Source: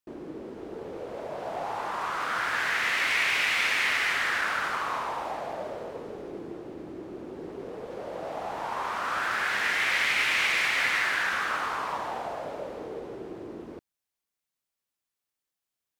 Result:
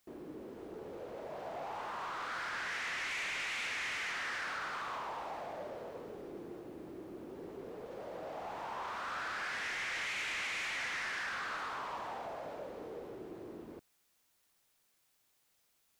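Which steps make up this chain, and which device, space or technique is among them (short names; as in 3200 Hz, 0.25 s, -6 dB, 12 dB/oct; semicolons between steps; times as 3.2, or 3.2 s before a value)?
compact cassette (soft clip -28 dBFS, distortion -10 dB; LPF 8300 Hz 12 dB/oct; wow and flutter; white noise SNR 33 dB); gain -7 dB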